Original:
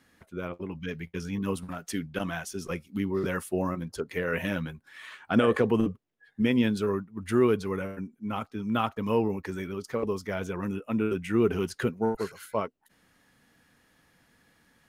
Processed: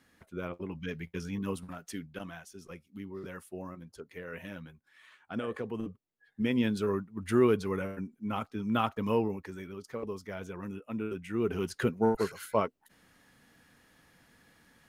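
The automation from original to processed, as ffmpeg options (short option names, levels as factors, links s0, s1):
-af "volume=8.41,afade=t=out:st=1.11:d=1.34:silence=0.298538,afade=t=in:st=5.73:d=1.34:silence=0.266073,afade=t=out:st=9.06:d=0.43:silence=0.473151,afade=t=in:st=11.36:d=0.78:silence=0.334965"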